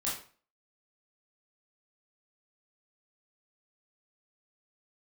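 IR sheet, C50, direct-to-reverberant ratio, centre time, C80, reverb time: 4.0 dB, −7.5 dB, 40 ms, 9.5 dB, 0.40 s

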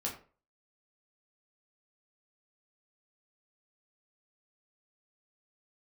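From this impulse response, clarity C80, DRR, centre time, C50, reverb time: 13.0 dB, −3.0 dB, 24 ms, 8.5 dB, 0.40 s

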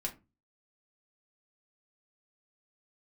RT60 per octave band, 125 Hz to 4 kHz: 0.50, 0.40, 0.30, 0.25, 0.20, 0.15 seconds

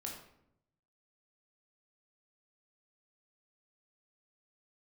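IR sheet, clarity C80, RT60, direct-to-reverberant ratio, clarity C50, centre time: 7.5 dB, 0.75 s, −1.5 dB, 4.5 dB, 36 ms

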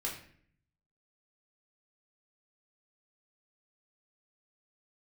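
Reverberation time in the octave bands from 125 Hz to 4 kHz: 1.1, 0.85, 0.60, 0.50, 0.60, 0.45 seconds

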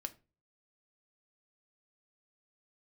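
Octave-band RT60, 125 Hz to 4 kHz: 0.55, 0.40, 0.35, 0.30, 0.25, 0.25 seconds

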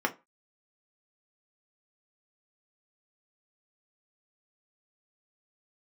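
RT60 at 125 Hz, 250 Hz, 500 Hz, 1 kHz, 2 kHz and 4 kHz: 0.25, 0.25, 0.25, 0.30, 0.20, 0.15 seconds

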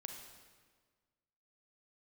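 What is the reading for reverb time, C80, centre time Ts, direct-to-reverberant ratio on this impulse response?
1.6 s, 6.0 dB, 44 ms, 3.0 dB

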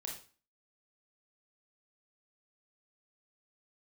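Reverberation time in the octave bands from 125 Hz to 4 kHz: 0.40, 0.45, 0.40, 0.40, 0.35, 0.35 seconds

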